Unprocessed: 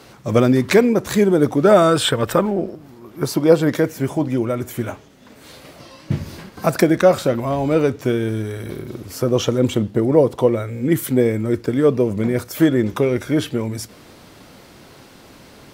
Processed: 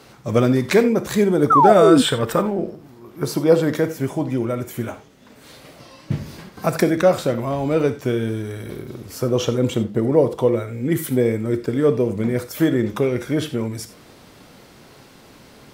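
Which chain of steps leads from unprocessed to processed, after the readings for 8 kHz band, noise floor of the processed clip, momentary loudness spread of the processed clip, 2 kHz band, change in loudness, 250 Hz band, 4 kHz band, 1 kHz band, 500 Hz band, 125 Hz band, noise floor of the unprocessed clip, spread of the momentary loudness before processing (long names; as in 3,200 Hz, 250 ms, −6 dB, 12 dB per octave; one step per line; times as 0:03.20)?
−2.0 dB, −47 dBFS, 14 LU, −2.0 dB, −1.0 dB, −1.5 dB, −2.0 dB, +3.5 dB, −1.5 dB, −1.5 dB, −45 dBFS, 13 LU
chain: reverb whose tail is shaped and stops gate 110 ms flat, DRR 10 dB
sound drawn into the spectrogram fall, 0:01.50–0:02.02, 240–1,400 Hz −10 dBFS
level −2.5 dB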